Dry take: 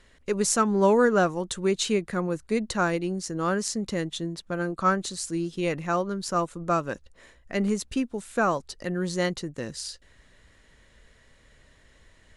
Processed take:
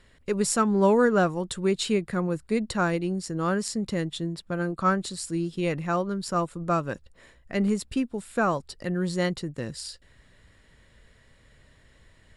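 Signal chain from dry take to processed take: peaking EQ 120 Hz +5.5 dB 1.4 oct; band-stop 6.2 kHz, Q 6.2; trim -1 dB

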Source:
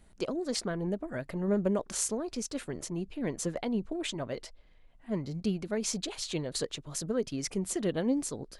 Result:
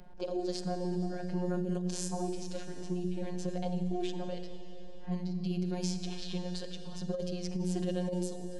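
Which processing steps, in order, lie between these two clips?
level-controlled noise filter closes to 1.4 kHz, open at -26.5 dBFS; harmonic-percussive split percussive -14 dB; robot voice 179 Hz; hum notches 60/120/180/240/300/360 Hz; Schroeder reverb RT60 2.2 s, DRR 8.5 dB; compressor with a negative ratio -37 dBFS, ratio -0.5; graphic EQ with 31 bands 1.25 kHz -9 dB, 2 kHz -9 dB, 5 kHz +5 dB; three bands compressed up and down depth 40%; trim +6.5 dB

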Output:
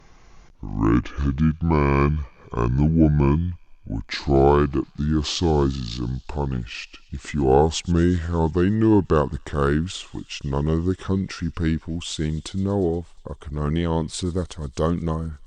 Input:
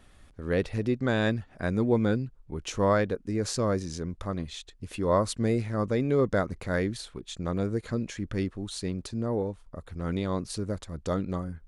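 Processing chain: gliding tape speed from 61% -> 90%; feedback echo behind a high-pass 119 ms, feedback 78%, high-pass 2.7 kHz, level -21.5 dB; trim +7 dB

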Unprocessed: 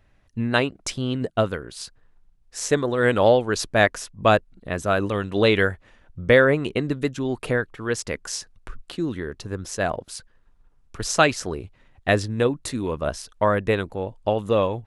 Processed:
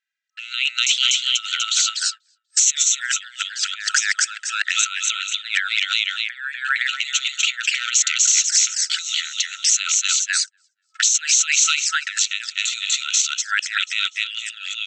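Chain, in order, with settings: feedback delay 244 ms, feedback 36%, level -4 dB; gate -36 dBFS, range -34 dB; treble shelf 3.7 kHz +9 dB; compressor with a negative ratio -24 dBFS, ratio -0.5; hard clipper -16 dBFS, distortion -18 dB; touch-sensitive flanger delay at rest 2.5 ms, full sweep at -22 dBFS; FFT band-pass 1.3–8.3 kHz; loudness maximiser +21.5 dB; trim -5 dB

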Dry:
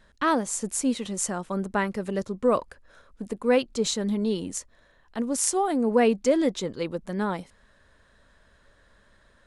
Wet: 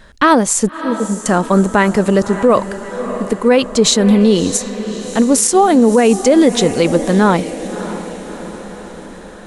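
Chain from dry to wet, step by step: in parallel at -2 dB: gain riding; 0.69–1.26 s: on the sum: two resonant band-passes 310 Hz, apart 1.1 oct; echo that smears into a reverb 616 ms, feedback 58%, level -14.5 dB; loudness maximiser +12 dB; trim -1 dB

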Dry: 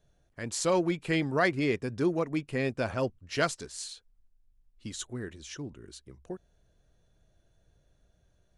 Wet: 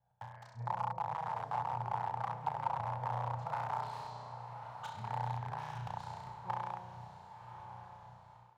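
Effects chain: time reversed locally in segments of 210 ms; low-pass that closes with the level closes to 410 Hz, closed at -28 dBFS; flutter echo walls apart 5.7 m, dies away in 1.4 s; reverse; compression 12:1, threshold -39 dBFS, peak gain reduction 18.5 dB; reverse; integer overflow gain 36 dB; transient shaper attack +8 dB, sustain +4 dB; two resonant band-passes 320 Hz, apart 2.9 oct; bass shelf 200 Hz -10.5 dB; on a send: echo that smears into a reverb 1068 ms, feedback 51%, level -10 dB; on the sum: level rider gain up to 12 dB; trim +4.5 dB

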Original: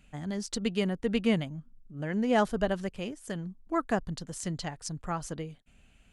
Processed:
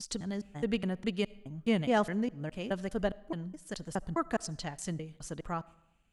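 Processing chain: slices played last to first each 208 ms, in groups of 3; gate -49 dBFS, range -10 dB; on a send: reverberation RT60 0.85 s, pre-delay 30 ms, DRR 22 dB; on the sum: trim -2.5 dB

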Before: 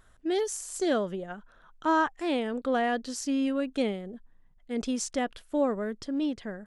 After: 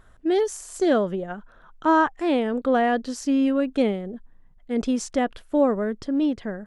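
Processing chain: treble shelf 2.5 kHz -8.5 dB; trim +7 dB

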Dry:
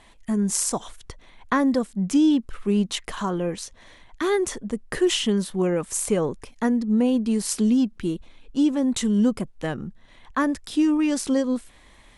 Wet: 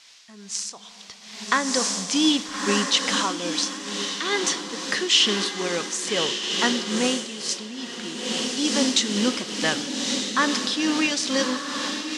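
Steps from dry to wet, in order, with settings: in parallel at -5.5 dB: word length cut 6-bit, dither triangular; on the sum: differentiator; echo that smears into a reverb 1266 ms, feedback 61%, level -6 dB; on a send at -12 dB: reverberation RT60 3.3 s, pre-delay 7 ms; on the sum: tremolo triangle 2.3 Hz, depth 55%; level rider gain up to 15 dB; low-pass 5.3 kHz 24 dB/octave; bass shelf 250 Hz +6 dB; trim +4 dB

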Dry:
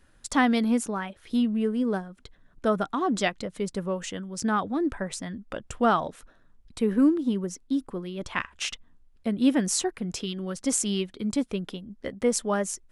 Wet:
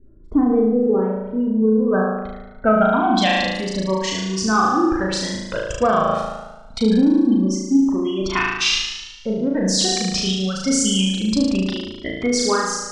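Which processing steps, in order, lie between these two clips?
spectral gate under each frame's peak -25 dB strong; in parallel at -11 dB: saturation -21.5 dBFS, distortion -12 dB; on the sum: low-pass sweep 400 Hz -> 4.9 kHz, 0.64–3.46 s; on a send: flutter echo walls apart 6.3 m, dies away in 1.1 s; on the sum: loudness maximiser +10.5 dB; Shepard-style flanger rising 0.25 Hz; trim -1.5 dB

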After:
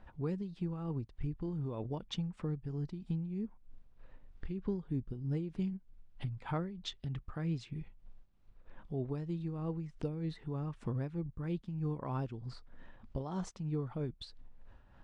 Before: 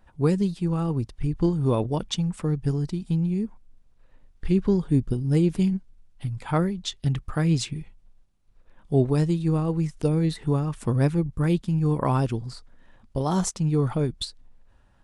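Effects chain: Bessel low-pass 3.1 kHz, order 2; compression 2.5:1, threshold -43 dBFS, peak gain reduction 18 dB; tremolo 3.2 Hz, depth 48%; trim +2.5 dB

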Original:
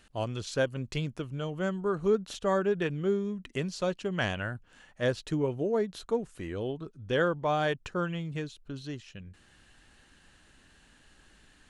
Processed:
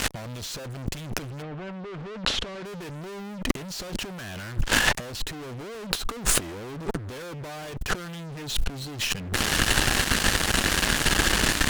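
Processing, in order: fuzz box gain 54 dB, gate -58 dBFS; 1.41–2.64 s: low-pass 2.2 kHz -> 5.1 kHz 12 dB/octave; compressor with a negative ratio -23 dBFS, ratio -0.5; trim -3.5 dB

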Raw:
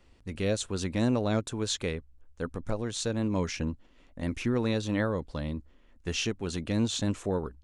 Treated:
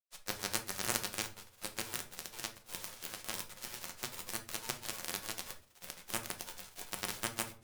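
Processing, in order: formants flattened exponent 0.1; high-pass 430 Hz 24 dB/octave; in parallel at +1 dB: compression, threshold -43 dBFS, peak gain reduction 20 dB; on the sum: granulator 100 ms, grains 20 per s, spray 897 ms; Chebyshev shaper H 3 -8 dB, 6 -8 dB, 8 -11 dB, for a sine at -10 dBFS; simulated room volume 380 m³, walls furnished, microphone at 0.96 m; trim -2.5 dB

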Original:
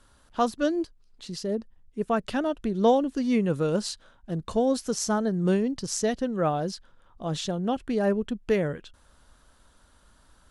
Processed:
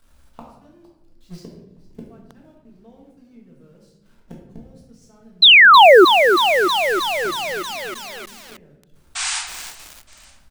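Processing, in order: jump at every zero crossing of -30 dBFS; gate -27 dBFS, range -37 dB; bass shelf 230 Hz +5.5 dB; compression 2:1, threshold -26 dBFS, peak gain reduction 7 dB; inverted gate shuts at -33 dBFS, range -37 dB; painted sound noise, 9.15–9.39 s, 700–9400 Hz -35 dBFS; on a send: frequency-shifting echo 459 ms, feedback 58%, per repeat -77 Hz, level -20.5 dB; on the sum: simulated room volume 250 m³, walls mixed, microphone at 1.6 m; painted sound fall, 5.42–6.05 s, 330–4200 Hz -15 dBFS; bit-crushed delay 316 ms, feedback 80%, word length 6-bit, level -7 dB; trim +7.5 dB

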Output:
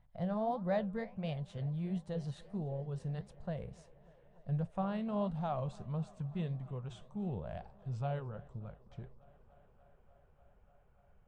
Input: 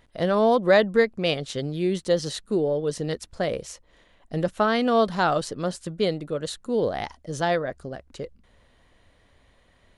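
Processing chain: gliding tape speed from 102% -> 75%; FFT filter 140 Hz 0 dB, 200 Hz -4 dB, 290 Hz -22 dB, 440 Hz -18 dB, 750 Hz -4 dB, 1.2 kHz -11 dB, 3.5 kHz -19 dB, 5.2 kHz -24 dB, 9 kHz -21 dB; flange 1.5 Hz, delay 5.3 ms, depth 9 ms, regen -75%; dynamic bell 1.3 kHz, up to -6 dB, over -51 dBFS, Q 0.95; on a send: tape echo 294 ms, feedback 90%, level -23 dB, low-pass 5.9 kHz

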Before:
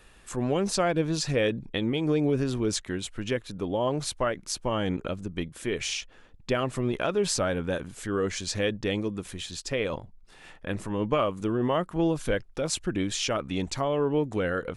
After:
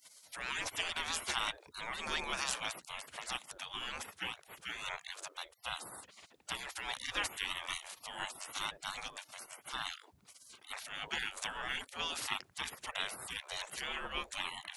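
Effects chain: spectral gate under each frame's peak -30 dB weak; trim +11.5 dB

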